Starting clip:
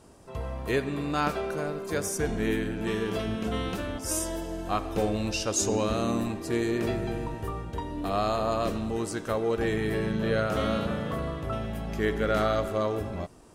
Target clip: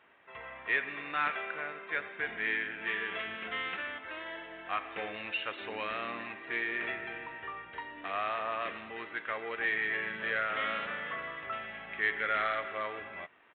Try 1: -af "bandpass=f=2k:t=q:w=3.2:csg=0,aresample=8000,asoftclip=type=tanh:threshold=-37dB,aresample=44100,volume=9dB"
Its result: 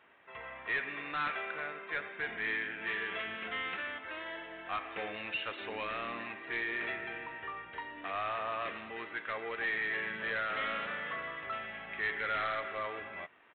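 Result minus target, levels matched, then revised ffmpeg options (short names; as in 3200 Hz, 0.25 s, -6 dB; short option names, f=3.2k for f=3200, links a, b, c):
soft clip: distortion +10 dB
-af "bandpass=f=2k:t=q:w=3.2:csg=0,aresample=8000,asoftclip=type=tanh:threshold=-28dB,aresample=44100,volume=9dB"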